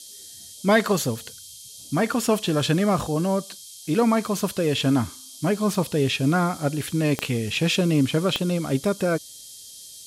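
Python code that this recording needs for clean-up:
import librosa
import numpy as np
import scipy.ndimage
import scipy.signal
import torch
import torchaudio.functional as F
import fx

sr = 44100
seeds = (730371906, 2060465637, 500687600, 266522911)

y = fx.fix_declick_ar(x, sr, threshold=10.0)
y = fx.notch(y, sr, hz=3200.0, q=30.0)
y = fx.noise_reduce(y, sr, print_start_s=1.32, print_end_s=1.82, reduce_db=25.0)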